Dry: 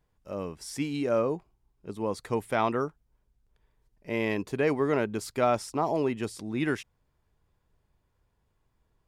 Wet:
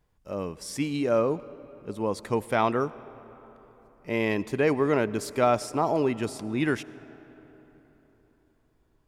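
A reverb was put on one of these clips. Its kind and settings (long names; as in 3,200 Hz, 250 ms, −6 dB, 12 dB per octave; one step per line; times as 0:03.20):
comb and all-pass reverb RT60 4.1 s, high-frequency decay 0.55×, pre-delay 45 ms, DRR 18 dB
level +2.5 dB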